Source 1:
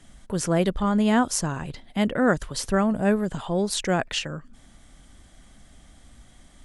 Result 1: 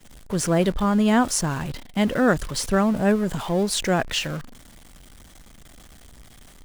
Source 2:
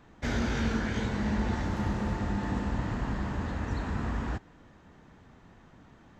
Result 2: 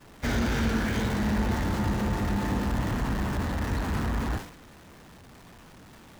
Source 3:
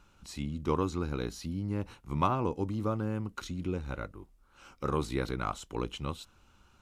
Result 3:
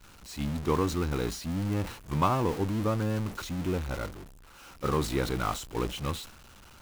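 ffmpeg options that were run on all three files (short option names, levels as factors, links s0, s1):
-af "aeval=exprs='val(0)+0.5*0.0237*sgn(val(0))':c=same,agate=range=0.0224:threshold=0.0316:ratio=3:detection=peak,volume=1.12"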